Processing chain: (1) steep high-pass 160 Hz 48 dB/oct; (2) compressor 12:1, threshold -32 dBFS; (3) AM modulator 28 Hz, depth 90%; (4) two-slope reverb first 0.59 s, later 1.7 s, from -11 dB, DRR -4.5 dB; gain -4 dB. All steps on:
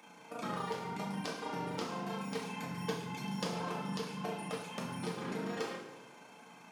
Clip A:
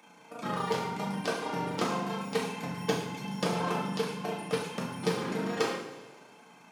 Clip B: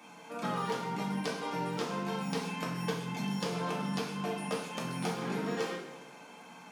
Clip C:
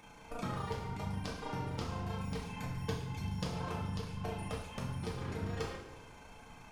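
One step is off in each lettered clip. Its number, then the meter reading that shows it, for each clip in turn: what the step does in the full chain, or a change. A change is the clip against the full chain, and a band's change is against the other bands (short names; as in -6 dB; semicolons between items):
2, mean gain reduction 4.0 dB; 3, loudness change +4.0 LU; 1, 125 Hz band +9.0 dB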